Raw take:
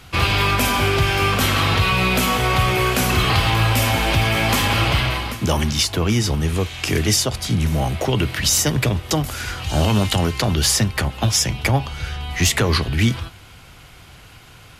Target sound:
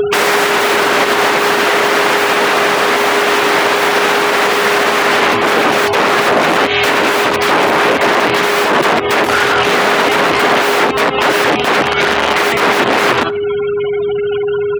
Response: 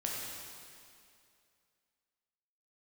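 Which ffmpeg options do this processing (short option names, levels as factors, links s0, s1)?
-filter_complex "[0:a]aeval=exprs='(mod(13.3*val(0)+1,2)-1)/13.3':c=same,aeval=exprs='val(0)+0.0112*sin(2*PI*410*n/s)':c=same,afftfilt=real='re*gte(hypot(re,im),0.0141)':imag='im*gte(hypot(re,im),0.0141)':win_size=1024:overlap=0.75,acrossover=split=400|2300[s0][s1][s2];[s0]acompressor=threshold=0.0251:ratio=4[s3];[s1]acompressor=threshold=0.0316:ratio=4[s4];[s2]acompressor=threshold=0.0112:ratio=4[s5];[s3][s4][s5]amix=inputs=3:normalize=0,highshelf=f=6800:g=-11,asplit=2[s6][s7];[s7]adelay=72,lowpass=f=2400:p=1,volume=0.1,asplit=2[s8][s9];[s9]adelay=72,lowpass=f=2400:p=1,volume=0.33,asplit=2[s10][s11];[s11]adelay=72,lowpass=f=2400:p=1,volume=0.33[s12];[s8][s10][s12]amix=inputs=3:normalize=0[s13];[s6][s13]amix=inputs=2:normalize=0,acompressor=mode=upward:threshold=0.0224:ratio=2.5,highpass=300,alimiter=level_in=21.1:limit=0.891:release=50:level=0:latency=1,adynamicequalizer=threshold=0.0398:dfrequency=5100:dqfactor=0.7:tfrequency=5100:tqfactor=0.7:attack=5:release=100:ratio=0.375:range=3:mode=cutabove:tftype=highshelf,volume=0.891"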